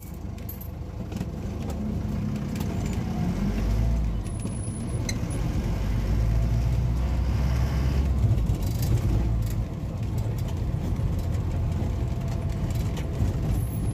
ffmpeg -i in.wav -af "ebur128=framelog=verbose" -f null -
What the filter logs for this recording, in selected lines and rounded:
Integrated loudness:
  I:         -28.0 LUFS
  Threshold: -38.0 LUFS
Loudness range:
  LRA:         3.3 LU
  Threshold: -47.6 LUFS
  LRA low:   -29.0 LUFS
  LRA high:  -25.7 LUFS